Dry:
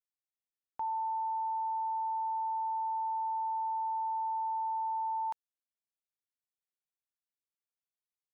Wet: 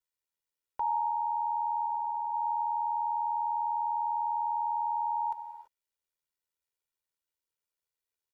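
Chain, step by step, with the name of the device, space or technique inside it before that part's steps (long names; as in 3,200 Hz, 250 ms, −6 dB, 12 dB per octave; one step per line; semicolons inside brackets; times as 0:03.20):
0:01.86–0:02.34: low-pass filter 1,000 Hz 6 dB per octave
reverb whose tail is shaped and stops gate 360 ms flat, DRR 11.5 dB
ring-modulated robot voice (ring modulation 40 Hz; comb filter 2.1 ms)
level +4.5 dB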